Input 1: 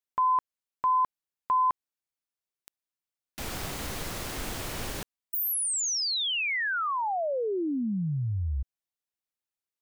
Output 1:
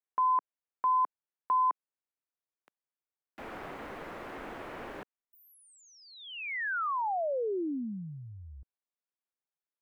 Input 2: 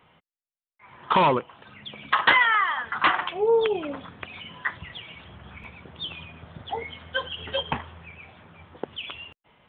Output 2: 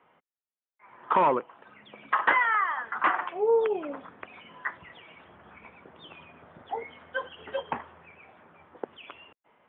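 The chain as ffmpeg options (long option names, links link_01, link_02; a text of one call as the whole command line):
ffmpeg -i in.wav -filter_complex "[0:a]acrossover=split=230 2300:gain=0.158 1 0.0891[link_01][link_02][link_03];[link_01][link_02][link_03]amix=inputs=3:normalize=0,acrossover=split=3400[link_04][link_05];[link_05]acompressor=threshold=-59dB:ratio=4:attack=1:release=60[link_06];[link_04][link_06]amix=inputs=2:normalize=0,volume=-2dB" out.wav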